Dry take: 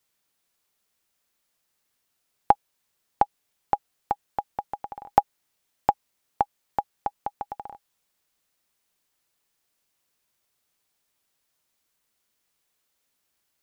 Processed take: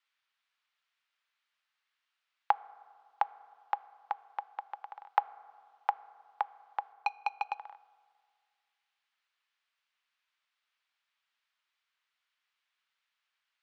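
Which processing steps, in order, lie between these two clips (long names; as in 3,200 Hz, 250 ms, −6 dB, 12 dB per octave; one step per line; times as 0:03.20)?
0:06.92–0:07.59: leveller curve on the samples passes 3
flat-topped band-pass 2,000 Hz, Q 0.79
convolution reverb RT60 2.0 s, pre-delay 3 ms, DRR 17.5 dB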